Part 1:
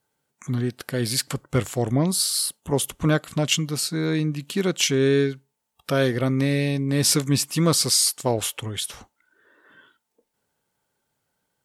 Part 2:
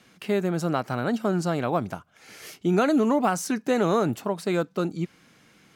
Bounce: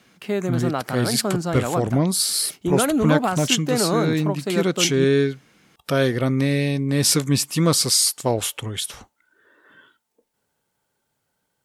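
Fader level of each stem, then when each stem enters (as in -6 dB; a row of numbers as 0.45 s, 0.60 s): +1.5 dB, +0.5 dB; 0.00 s, 0.00 s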